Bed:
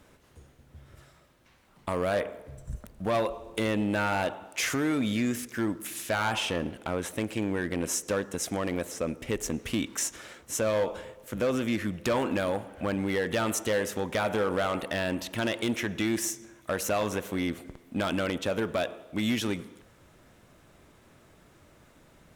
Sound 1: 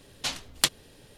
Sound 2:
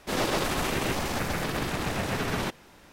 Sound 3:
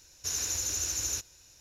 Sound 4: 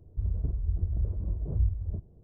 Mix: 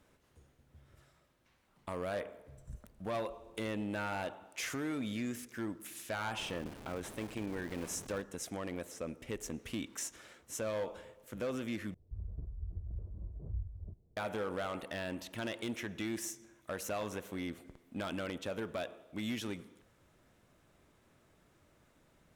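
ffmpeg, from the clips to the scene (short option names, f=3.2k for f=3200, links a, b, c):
-filter_complex "[4:a]asplit=2[a][b];[0:a]volume=-10dB[c];[a]aeval=exprs='(mod(42.2*val(0)+1,2)-1)/42.2':c=same[d];[c]asplit=2[e][f];[e]atrim=end=11.944[g];[b]atrim=end=2.23,asetpts=PTS-STARTPTS,volume=-13dB[h];[f]atrim=start=14.166[i];[d]atrim=end=2.23,asetpts=PTS-STARTPTS,volume=-14dB,afade=t=in:d=0.004:c=hsin,afade=t=out:st=2.226:d=0.004:c=hsin,adelay=6220[j];[g][h]acrossfade=d=0.004:c1=hsin:c2=hsin[k];[k][i]acrossfade=d=0.004:c1=hsin:c2=hsin[l];[l][j]amix=inputs=2:normalize=0"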